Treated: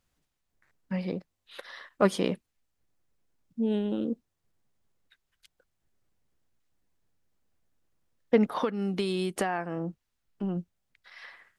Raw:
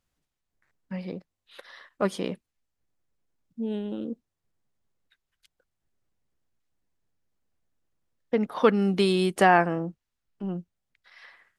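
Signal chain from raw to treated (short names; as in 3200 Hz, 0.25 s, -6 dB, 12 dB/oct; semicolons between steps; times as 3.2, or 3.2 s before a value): 8.52–10.57 compressor 6:1, threshold -30 dBFS, peak gain reduction 16 dB; gain +3 dB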